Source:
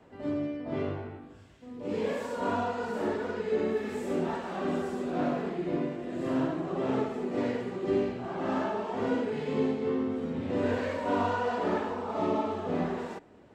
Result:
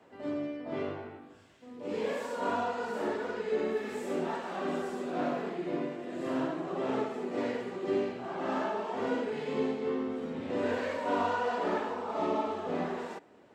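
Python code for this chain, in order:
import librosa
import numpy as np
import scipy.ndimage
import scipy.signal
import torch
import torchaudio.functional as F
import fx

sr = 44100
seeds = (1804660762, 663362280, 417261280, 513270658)

y = fx.highpass(x, sr, hz=330.0, slope=6)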